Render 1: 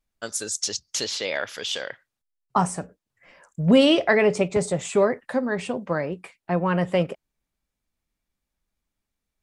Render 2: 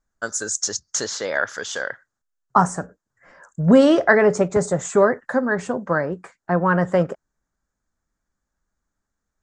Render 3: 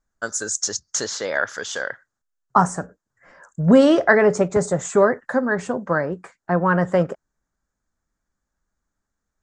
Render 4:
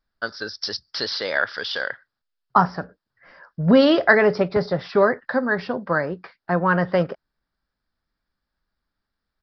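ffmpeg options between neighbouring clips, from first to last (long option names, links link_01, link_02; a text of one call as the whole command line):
ffmpeg -i in.wav -af "lowpass=frequency=6900:width_type=q:width=4,highshelf=frequency=2000:width_type=q:width=3:gain=-8,volume=3dB" out.wav
ffmpeg -i in.wav -af anull out.wav
ffmpeg -i in.wav -af "crystalizer=i=4:c=0,aresample=11025,aresample=44100,volume=-2dB" out.wav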